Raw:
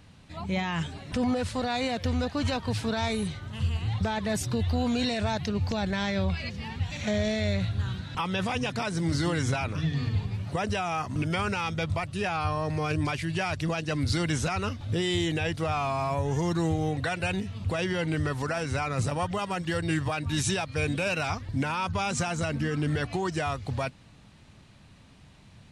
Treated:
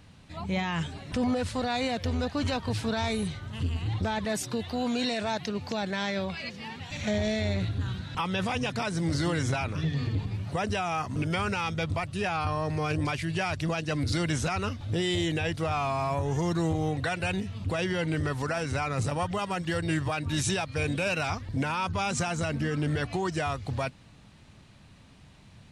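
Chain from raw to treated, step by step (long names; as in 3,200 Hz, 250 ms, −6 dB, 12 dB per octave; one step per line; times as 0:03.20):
0:04.25–0:06.91: high-pass filter 210 Hz 12 dB per octave
saturating transformer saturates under 250 Hz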